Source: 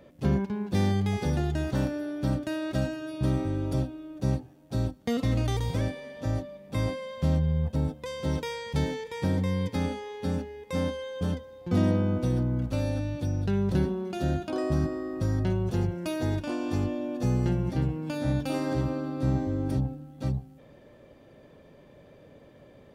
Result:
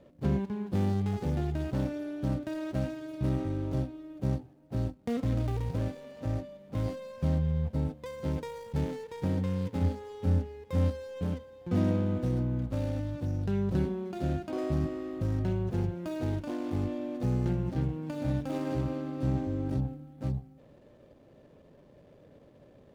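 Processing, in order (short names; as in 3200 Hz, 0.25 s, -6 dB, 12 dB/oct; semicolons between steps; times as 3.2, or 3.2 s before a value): median filter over 25 samples; 9.81–11.12 bell 91 Hz +11.5 dB 0.68 oct; gain -3 dB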